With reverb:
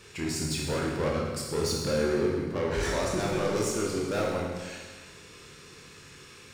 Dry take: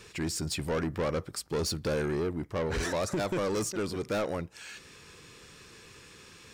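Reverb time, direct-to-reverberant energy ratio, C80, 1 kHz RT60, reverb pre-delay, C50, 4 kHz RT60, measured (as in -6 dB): 1.5 s, -3.0 dB, 3.0 dB, 1.4 s, 22 ms, 1.0 dB, 1.4 s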